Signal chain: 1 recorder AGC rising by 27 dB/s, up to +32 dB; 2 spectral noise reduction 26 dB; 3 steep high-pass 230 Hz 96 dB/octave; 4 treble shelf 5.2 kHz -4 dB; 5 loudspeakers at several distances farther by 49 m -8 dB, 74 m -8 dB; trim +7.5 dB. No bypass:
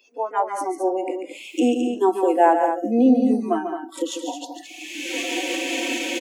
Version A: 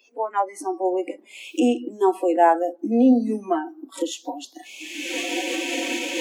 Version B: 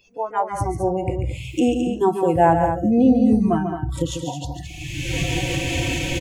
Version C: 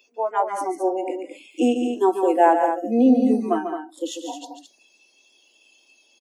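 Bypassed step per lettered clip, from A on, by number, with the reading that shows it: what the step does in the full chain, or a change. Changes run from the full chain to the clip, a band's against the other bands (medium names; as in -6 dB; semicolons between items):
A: 5, echo-to-direct -5.0 dB to none; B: 3, 250 Hz band +2.0 dB; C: 1, momentary loudness spread change +2 LU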